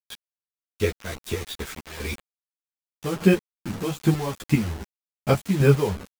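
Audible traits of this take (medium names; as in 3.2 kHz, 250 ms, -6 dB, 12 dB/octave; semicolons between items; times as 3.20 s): chopped level 2.5 Hz, depth 65%, duty 35%; a quantiser's noise floor 6-bit, dither none; a shimmering, thickened sound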